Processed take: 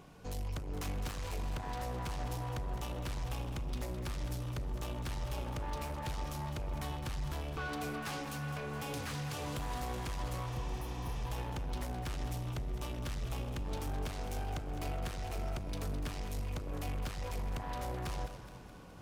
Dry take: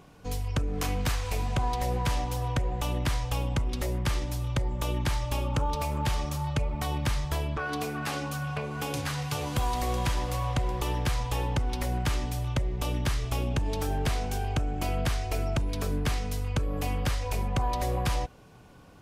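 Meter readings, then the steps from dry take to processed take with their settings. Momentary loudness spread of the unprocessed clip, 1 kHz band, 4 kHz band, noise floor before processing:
3 LU, -9.5 dB, -10.0 dB, -51 dBFS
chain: reverse; upward compressor, threshold -47 dBFS; reverse; peak limiter -22.5 dBFS, peak gain reduction 4 dB; saturation -33.5 dBFS, distortion -10 dB; spectral replace 10.49–11.20 s, 370–9200 Hz after; echo whose repeats swap between lows and highs 105 ms, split 840 Hz, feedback 75%, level -8 dB; trim -2.5 dB

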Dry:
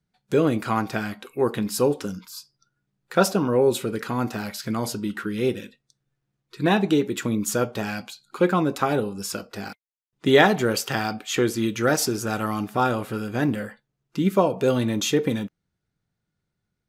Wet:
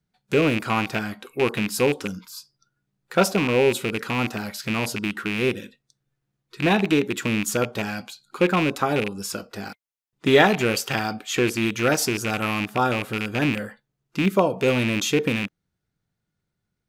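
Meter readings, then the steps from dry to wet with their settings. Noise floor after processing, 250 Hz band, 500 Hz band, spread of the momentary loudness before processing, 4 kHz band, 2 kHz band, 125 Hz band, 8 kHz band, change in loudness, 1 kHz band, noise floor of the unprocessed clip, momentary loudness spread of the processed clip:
-80 dBFS, 0.0 dB, 0.0 dB, 12 LU, +2.5 dB, +4.0 dB, +0.5 dB, 0.0 dB, +0.5 dB, 0.0 dB, -81 dBFS, 12 LU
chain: rattle on loud lows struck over -28 dBFS, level -15 dBFS

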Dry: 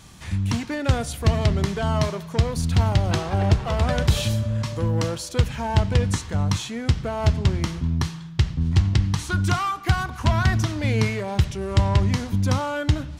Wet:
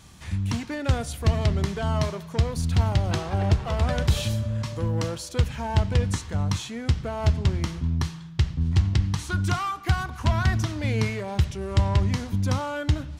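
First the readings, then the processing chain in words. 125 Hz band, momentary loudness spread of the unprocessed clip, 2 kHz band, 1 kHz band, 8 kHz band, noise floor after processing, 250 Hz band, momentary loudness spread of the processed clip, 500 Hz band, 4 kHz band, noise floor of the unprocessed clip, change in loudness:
-2.5 dB, 5 LU, -3.5 dB, -3.5 dB, -3.5 dB, -40 dBFS, -3.5 dB, 5 LU, -3.5 dB, -3.5 dB, -37 dBFS, -2.5 dB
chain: peaking EQ 76 Hz +3.5 dB 0.36 oct; trim -3.5 dB

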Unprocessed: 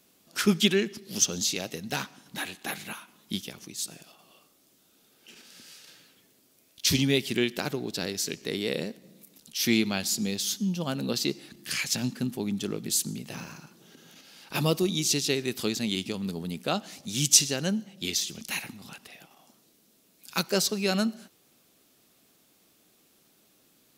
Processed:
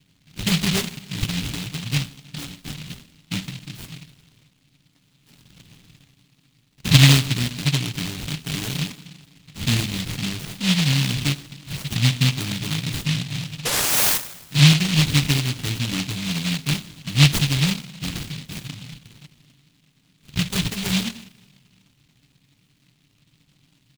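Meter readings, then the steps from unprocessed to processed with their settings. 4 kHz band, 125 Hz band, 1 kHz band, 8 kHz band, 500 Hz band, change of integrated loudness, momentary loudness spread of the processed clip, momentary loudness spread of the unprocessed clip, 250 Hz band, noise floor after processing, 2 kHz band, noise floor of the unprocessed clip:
+6.5 dB, +15.5 dB, +4.0 dB, +0.5 dB, -6.0 dB, +6.5 dB, 19 LU, 13 LU, +4.5 dB, -63 dBFS, +7.0 dB, -64 dBFS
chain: bass shelf 420 Hz +11.5 dB; comb 7 ms, depth 93%; decimation with a swept rate 29×, swing 100% 0.74 Hz; painted sound rise, 13.65–14.18 s, 450–3300 Hz -9 dBFS; graphic EQ 125/500/1000/4000 Hz +8/-8/-6/-11 dB; two-slope reverb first 0.83 s, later 2.5 s, from -18 dB, DRR 10 dB; delay time shaken by noise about 3.1 kHz, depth 0.49 ms; trim -5 dB

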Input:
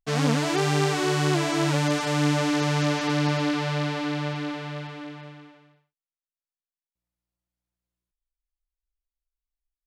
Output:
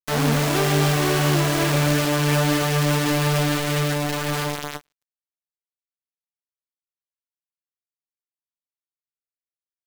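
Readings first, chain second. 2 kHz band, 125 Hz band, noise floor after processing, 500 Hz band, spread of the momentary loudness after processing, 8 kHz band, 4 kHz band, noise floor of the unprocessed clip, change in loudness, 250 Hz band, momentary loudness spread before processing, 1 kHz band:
+4.0 dB, +5.0 dB, under -85 dBFS, +3.5 dB, 6 LU, +7.0 dB, +4.5 dB, under -85 dBFS, +4.0 dB, +2.0 dB, 12 LU, +3.0 dB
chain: spring tank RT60 2.9 s, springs 41/59 ms, chirp 70 ms, DRR 5 dB; bit crusher 4-bit; endings held to a fixed fall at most 520 dB/s

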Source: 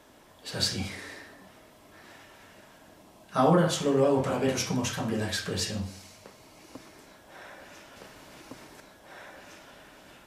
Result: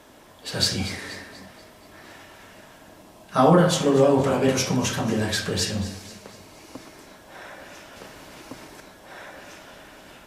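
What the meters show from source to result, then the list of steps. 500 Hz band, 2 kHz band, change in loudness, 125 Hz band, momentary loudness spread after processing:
+6.0 dB, +5.5 dB, +6.0 dB, +6.0 dB, 23 LU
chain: on a send: echo whose repeats swap between lows and highs 120 ms, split 880 Hz, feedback 71%, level -13 dB; on the sum: trim +5.5 dB; Opus 96 kbps 48 kHz

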